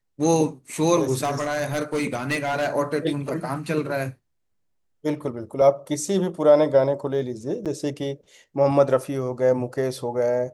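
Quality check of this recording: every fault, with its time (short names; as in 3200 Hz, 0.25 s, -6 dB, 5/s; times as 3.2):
1.23–2.69 clipped -19.5 dBFS
7.65–7.66 gap 7.3 ms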